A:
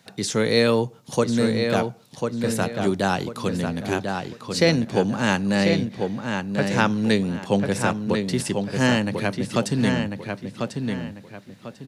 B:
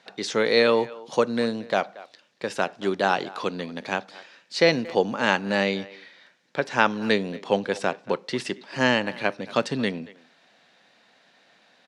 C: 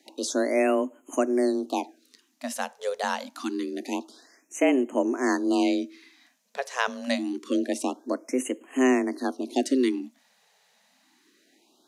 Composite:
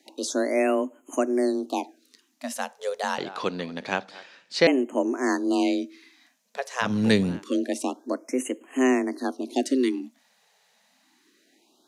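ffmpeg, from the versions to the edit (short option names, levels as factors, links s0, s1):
-filter_complex "[2:a]asplit=3[s0][s1][s2];[s0]atrim=end=3.182[s3];[1:a]atrim=start=3.178:end=4.672[s4];[s1]atrim=start=4.668:end=6.96[s5];[0:a]atrim=start=6.8:end=7.44[s6];[s2]atrim=start=7.28[s7];[s3][s4]acrossfade=d=0.004:c1=hsin:c2=hsin[s8];[s8][s5]acrossfade=d=0.004:c1=hsin:c2=hsin[s9];[s9][s6]acrossfade=d=0.16:c1=tri:c2=tri[s10];[s10][s7]acrossfade=d=0.16:c1=tri:c2=tri"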